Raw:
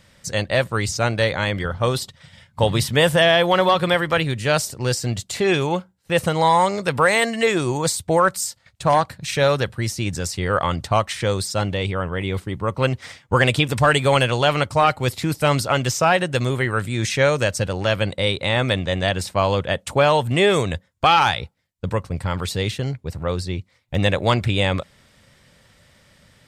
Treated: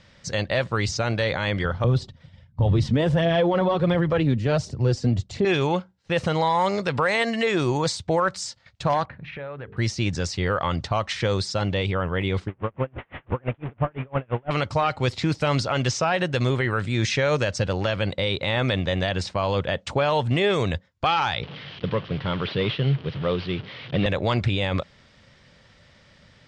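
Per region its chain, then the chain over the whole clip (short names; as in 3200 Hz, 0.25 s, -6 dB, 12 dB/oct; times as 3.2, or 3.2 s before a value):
1.84–5.45 tilt shelf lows +8.5 dB, about 690 Hz + phaser 1.4 Hz, delay 4.5 ms, feedback 42% + three-band expander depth 40%
9.05–9.77 LPF 2400 Hz 24 dB/oct + notches 50/100/150/200/250/300/350/400/450 Hz + compressor 4:1, threshold -35 dBFS
12.48–14.51 delta modulation 16 kbps, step -22 dBFS + LPF 1100 Hz 6 dB/oct + dB-linear tremolo 5.9 Hz, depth 39 dB
21.43–24.06 delta modulation 32 kbps, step -33.5 dBFS + speaker cabinet 140–3900 Hz, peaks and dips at 140 Hz +10 dB, 420 Hz +3 dB, 820 Hz -4 dB, 3100 Hz +8 dB
whole clip: LPF 6000 Hz 24 dB/oct; limiter -13 dBFS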